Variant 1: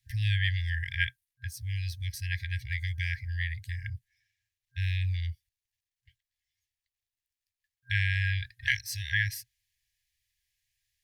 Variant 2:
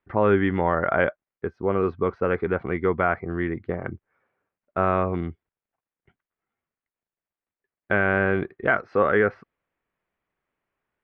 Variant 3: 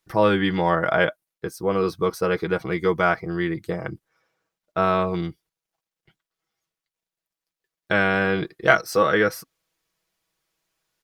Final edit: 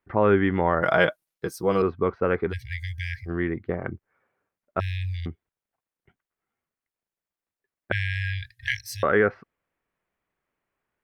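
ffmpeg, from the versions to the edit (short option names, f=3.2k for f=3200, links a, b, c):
-filter_complex "[0:a]asplit=3[a][b][c];[1:a]asplit=5[d][e][f][g][h];[d]atrim=end=0.822[i];[2:a]atrim=start=0.818:end=1.822[j];[e]atrim=start=1.818:end=2.54[k];[a]atrim=start=2.48:end=3.31[l];[f]atrim=start=3.25:end=4.802[m];[b]atrim=start=4.798:end=5.262[n];[g]atrim=start=5.258:end=7.922[o];[c]atrim=start=7.918:end=9.032[p];[h]atrim=start=9.028[q];[i][j]acrossfade=d=0.004:c1=hsin:c2=hsin[r];[r][k]acrossfade=d=0.004:c1=hsin:c2=hsin[s];[s][l]acrossfade=d=0.06:c1=tri:c2=tri[t];[t][m]acrossfade=d=0.06:c1=tri:c2=tri[u];[u][n]acrossfade=d=0.004:c1=hsin:c2=hsin[v];[v][o]acrossfade=d=0.004:c1=hsin:c2=hsin[w];[w][p]acrossfade=d=0.004:c1=hsin:c2=hsin[x];[x][q]acrossfade=d=0.004:c1=hsin:c2=hsin"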